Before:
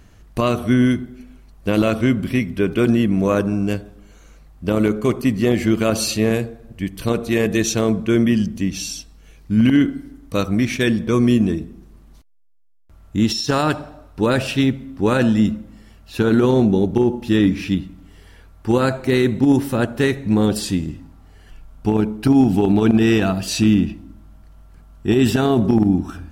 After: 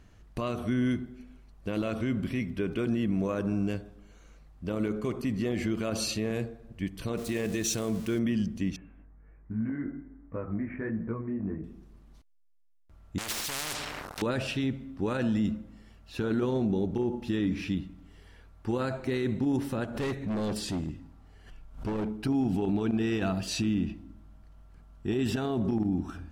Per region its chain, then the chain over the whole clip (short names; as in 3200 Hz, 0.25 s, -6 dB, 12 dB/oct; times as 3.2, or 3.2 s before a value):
7.17–8.19 switching spikes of -21.5 dBFS + dynamic EQ 8700 Hz, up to +6 dB, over -36 dBFS, Q 1.1
8.76–11.64 steep low-pass 2000 Hz 48 dB/oct + compressor 10:1, threshold -17 dBFS + chorus 1.3 Hz, delay 17.5 ms, depth 2.9 ms
13.18–14.22 bell 2400 Hz -12 dB 1.7 oct + sample leveller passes 5 + spectral compressor 10:1
19.84–22.16 overloaded stage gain 20 dB + backwards sustainer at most 120 dB/s
whole clip: high shelf 10000 Hz -10 dB; limiter -12 dBFS; gain -8 dB